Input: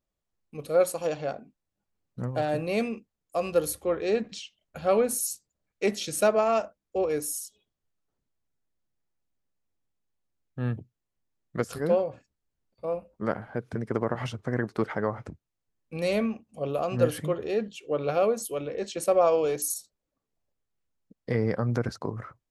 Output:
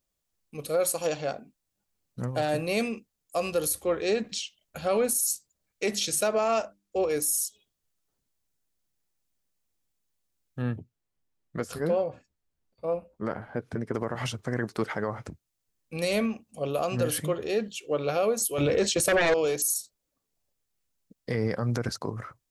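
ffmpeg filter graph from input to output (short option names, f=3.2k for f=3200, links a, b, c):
-filter_complex "[0:a]asettb=1/sr,asplit=3[a][b][c];[a]atrim=end=5.844[d];[b]atrim=start=5.84:end=7.16,asetpts=PTS-STARTPTS,afade=t=in:d=0.004:c=qsin,afade=t=out:st=1.316:d=0.004:c=qsin,highshelf=f=11k:g=-6,bandreject=f=50:t=h:w=6,bandreject=f=100:t=h:w=6,bandreject=f=150:t=h:w=6,bandreject=f=200:t=h:w=6,bandreject=f=250:t=h:w=6,bandreject=f=300:t=h:w=6,bandreject=f=350:t=h:w=6[e];[c]atrim=start=7.156[f];[d][e]acrossfade=d=0.004:c1=hsin:c2=qsin[g];[g][f]acrossfade=d=0.004:c1=qsin:c2=hsin,asettb=1/sr,asplit=3[h][i][j];[h]atrim=end=10.624[k];[i]atrim=start=10.62:end=13.94,asetpts=PTS-STARTPTS,afade=t=in:d=0.004:c=qsin,afade=t=out:st=3.316:d=0.004:c=qsin,highshelf=f=3.4k:g=-10.5,asplit=2[l][m];[m]adelay=12,volume=-13dB[n];[l][n]amix=inputs=2:normalize=0,atrim=end_sample=146412[o];[j]atrim=start=13.936[p];[k][o]acrossfade=d=0.004:c1=hsin:c2=qsin[q];[q][p]acrossfade=d=0.004:c1=qsin:c2=hsin,asettb=1/sr,asplit=3[r][s][t];[r]atrim=end=18.584[u];[s]atrim=start=18.58:end=19.34,asetpts=PTS-STARTPTS,afade=t=in:d=0.004:c=qsin,afade=t=out:st=0.756:d=0.004:c=qsin,agate=range=-33dB:threshold=-37dB:ratio=3:release=100:detection=peak,equalizer=f=83:t=o:w=0.8:g=13,aeval=exprs='0.282*sin(PI/2*2.82*val(0)/0.282)':c=same[v];[t]atrim=start=19.336[w];[u][v]acrossfade=d=0.004:c1=hsin:c2=qsin[x];[x][w]acrossfade=d=0.004:c1=qsin:c2=hsin,highshelf=f=3.3k:g=11,alimiter=limit=-17dB:level=0:latency=1:release=43"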